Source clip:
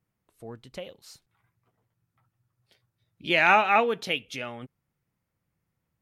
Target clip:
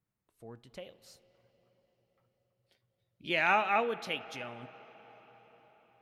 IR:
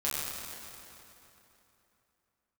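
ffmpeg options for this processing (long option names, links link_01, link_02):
-filter_complex "[0:a]asplit=2[link_01][link_02];[1:a]atrim=start_sample=2205,asetrate=24255,aresample=44100,lowpass=3500[link_03];[link_02][link_03]afir=irnorm=-1:irlink=0,volume=-26dB[link_04];[link_01][link_04]amix=inputs=2:normalize=0,volume=-8dB"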